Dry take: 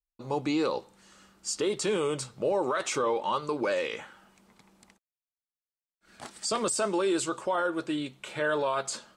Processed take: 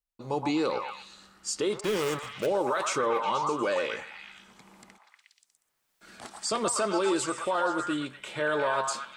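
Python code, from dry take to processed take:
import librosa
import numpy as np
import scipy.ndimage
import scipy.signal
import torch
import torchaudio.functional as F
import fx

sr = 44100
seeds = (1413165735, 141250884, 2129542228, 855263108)

y = fx.dead_time(x, sr, dead_ms=0.27, at=(1.79, 2.45), fade=0.02)
y = fx.echo_stepped(y, sr, ms=120, hz=1000.0, octaves=0.7, feedback_pct=70, wet_db=-1)
y = fx.band_squash(y, sr, depth_pct=70, at=(4.01, 6.24))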